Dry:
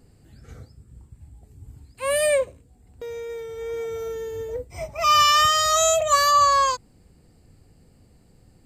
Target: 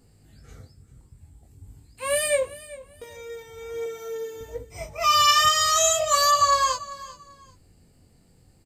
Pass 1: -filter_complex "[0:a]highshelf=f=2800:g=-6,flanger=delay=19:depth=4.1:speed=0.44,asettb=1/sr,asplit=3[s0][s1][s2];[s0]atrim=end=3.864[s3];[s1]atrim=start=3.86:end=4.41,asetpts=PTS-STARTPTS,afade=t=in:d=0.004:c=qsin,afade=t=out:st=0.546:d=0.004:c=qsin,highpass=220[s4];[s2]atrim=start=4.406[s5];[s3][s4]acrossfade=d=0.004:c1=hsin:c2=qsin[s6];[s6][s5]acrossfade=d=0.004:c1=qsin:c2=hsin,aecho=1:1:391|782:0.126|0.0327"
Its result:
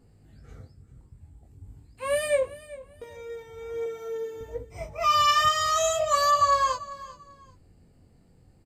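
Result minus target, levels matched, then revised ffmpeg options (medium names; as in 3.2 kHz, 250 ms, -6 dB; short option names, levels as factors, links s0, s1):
4 kHz band -3.5 dB
-filter_complex "[0:a]highshelf=f=2800:g=5,flanger=delay=19:depth=4.1:speed=0.44,asettb=1/sr,asplit=3[s0][s1][s2];[s0]atrim=end=3.864[s3];[s1]atrim=start=3.86:end=4.41,asetpts=PTS-STARTPTS,afade=t=in:d=0.004:c=qsin,afade=t=out:st=0.546:d=0.004:c=qsin,highpass=220[s4];[s2]atrim=start=4.406[s5];[s3][s4]acrossfade=d=0.004:c1=hsin:c2=qsin[s6];[s6][s5]acrossfade=d=0.004:c1=qsin:c2=hsin,aecho=1:1:391|782:0.126|0.0327"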